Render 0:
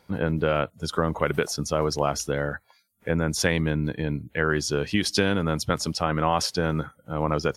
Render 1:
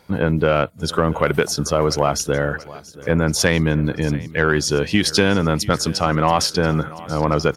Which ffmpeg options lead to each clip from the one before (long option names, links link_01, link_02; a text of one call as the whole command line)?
ffmpeg -i in.wav -af "aecho=1:1:682|1364|2046|2728|3410:0.1|0.057|0.0325|0.0185|0.0106,acontrast=83" out.wav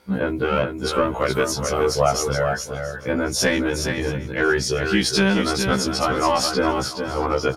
ffmpeg -i in.wav -filter_complex "[0:a]asplit=2[link_01][link_02];[link_02]aecho=0:1:420:0.501[link_03];[link_01][link_03]amix=inputs=2:normalize=0,afftfilt=real='re*1.73*eq(mod(b,3),0)':imag='im*1.73*eq(mod(b,3),0)':win_size=2048:overlap=0.75" out.wav